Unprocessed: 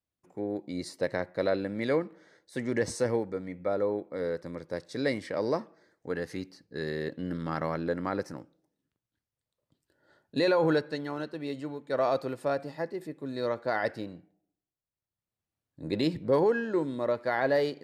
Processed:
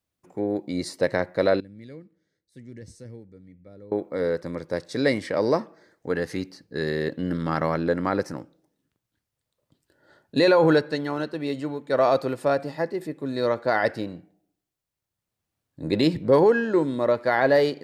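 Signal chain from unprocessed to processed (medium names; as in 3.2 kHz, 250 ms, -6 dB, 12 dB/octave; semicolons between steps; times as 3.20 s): 1.60–3.92 s: amplifier tone stack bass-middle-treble 10-0-1; trim +7 dB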